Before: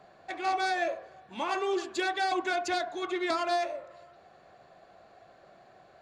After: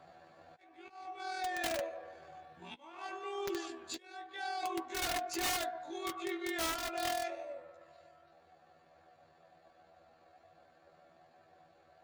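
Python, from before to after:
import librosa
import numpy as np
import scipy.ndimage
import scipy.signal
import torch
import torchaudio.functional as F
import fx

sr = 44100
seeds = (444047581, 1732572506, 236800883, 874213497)

y = fx.auto_swell(x, sr, attack_ms=660.0)
y = fx.rider(y, sr, range_db=4, speed_s=2.0)
y = fx.stretch_grains(y, sr, factor=2.0, grain_ms=49.0)
y = fx.dynamic_eq(y, sr, hz=140.0, q=0.98, threshold_db=-54.0, ratio=4.0, max_db=-6)
y = (np.mod(10.0 ** (26.0 / 20.0) * y + 1.0, 2.0) - 1.0) / 10.0 ** (26.0 / 20.0)
y = fx.notch_comb(y, sr, f0_hz=210.0)
y = F.gain(torch.from_numpy(y), -1.5).numpy()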